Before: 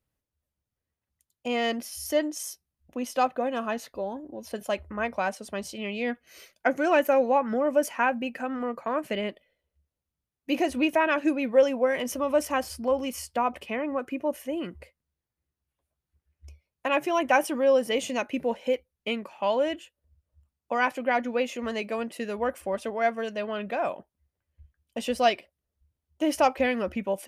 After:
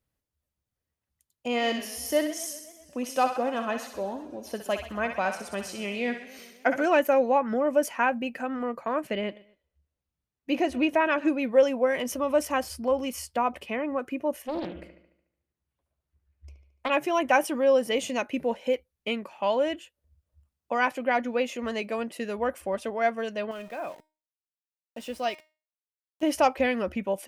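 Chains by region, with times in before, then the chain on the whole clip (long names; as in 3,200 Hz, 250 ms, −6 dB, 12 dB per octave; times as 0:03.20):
0:01.47–0:06.86: feedback echo with a high-pass in the loop 63 ms, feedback 52%, high-pass 1,100 Hz, level −5.5 dB + feedback echo with a swinging delay time 128 ms, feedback 65%, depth 176 cents, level −18 dB
0:09.07–0:11.33: high-shelf EQ 7,100 Hz −10.5 dB + repeating echo 122 ms, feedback 32%, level −22 dB
0:14.42–0:16.90: high-shelf EQ 3,700 Hz −6.5 dB + delay with a low-pass on its return 73 ms, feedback 52%, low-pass 3,700 Hz, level −8 dB + highs frequency-modulated by the lows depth 0.45 ms
0:23.51–0:26.23: centre clipping without the shift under −41 dBFS + tuned comb filter 310 Hz, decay 0.33 s
whole clip: no processing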